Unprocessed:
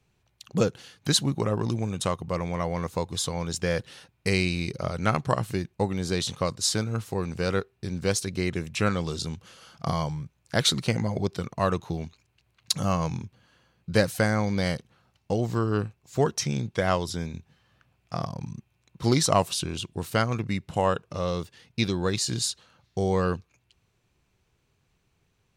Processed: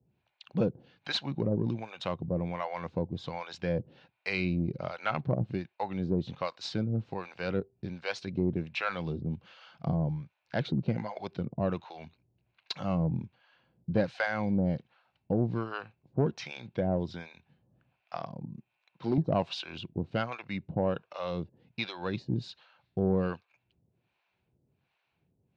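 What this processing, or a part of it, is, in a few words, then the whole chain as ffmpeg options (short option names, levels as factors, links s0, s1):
guitar amplifier with harmonic tremolo: -filter_complex "[0:a]acrossover=split=610[s0][s1];[s0]aeval=exprs='val(0)*(1-1/2+1/2*cos(2*PI*1.3*n/s))':c=same[s2];[s1]aeval=exprs='val(0)*(1-1/2-1/2*cos(2*PI*1.3*n/s))':c=same[s3];[s2][s3]amix=inputs=2:normalize=0,asoftclip=type=tanh:threshold=0.133,highpass=97,equalizer=f=100:t=q:w=4:g=-4,equalizer=f=430:t=q:w=4:g=-5,equalizer=f=1200:t=q:w=4:g=-7,equalizer=f=1900:t=q:w=4:g=-5,equalizer=f=3200:t=q:w=4:g=-4,lowpass=f=3500:w=0.5412,lowpass=f=3500:w=1.3066,asettb=1/sr,asplit=3[s4][s5][s6];[s4]atrim=end=18.174[s7];[s5]atrim=start=18.17:end=19.18,asetpts=PTS-STARTPTS,afade=t=in:d=0.004:c=qsin,afade=t=out:st=1.006:d=0.004:c=qsin,highpass=f=280:p=1[s8];[s6]atrim=start=19.176[s9];[s7][s8]acrossfade=d=0.004:c1=hsin:c2=qsin[s10];[s10][s9]acrossfade=d=0.004:c1=qsin:c2=hsin,volume=1.41"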